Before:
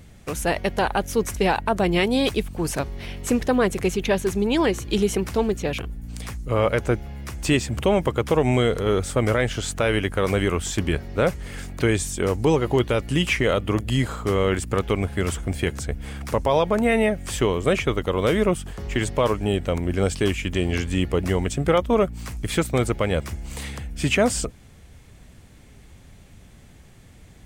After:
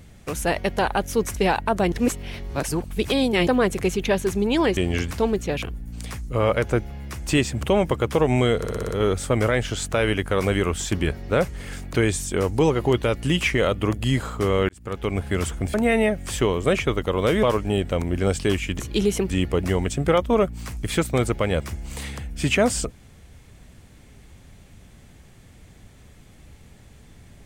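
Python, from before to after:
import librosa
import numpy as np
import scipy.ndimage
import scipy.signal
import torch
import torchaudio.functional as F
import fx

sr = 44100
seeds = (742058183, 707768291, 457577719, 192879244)

y = fx.edit(x, sr, fx.reverse_span(start_s=1.92, length_s=1.55),
    fx.swap(start_s=4.77, length_s=0.5, other_s=20.56, other_length_s=0.34),
    fx.stutter(start_s=8.75, slice_s=0.06, count=6),
    fx.fade_in_span(start_s=14.55, length_s=0.53),
    fx.cut(start_s=15.6, length_s=1.14),
    fx.cut(start_s=18.43, length_s=0.76), tone=tone)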